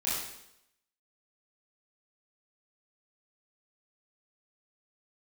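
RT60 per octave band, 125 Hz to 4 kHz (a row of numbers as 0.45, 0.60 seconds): 0.80, 0.80, 0.85, 0.80, 0.75, 0.80 seconds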